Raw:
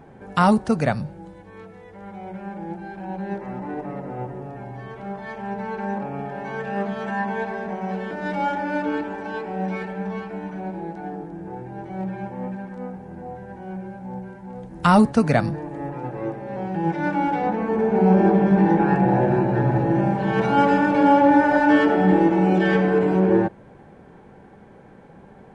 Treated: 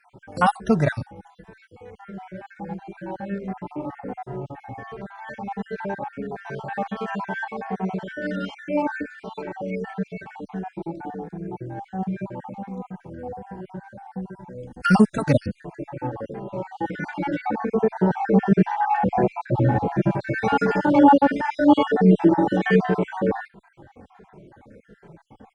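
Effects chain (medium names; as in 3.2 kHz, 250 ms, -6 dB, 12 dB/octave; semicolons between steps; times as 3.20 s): random holes in the spectrogram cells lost 49%; endless flanger 2.5 ms -1.4 Hz; trim +4.5 dB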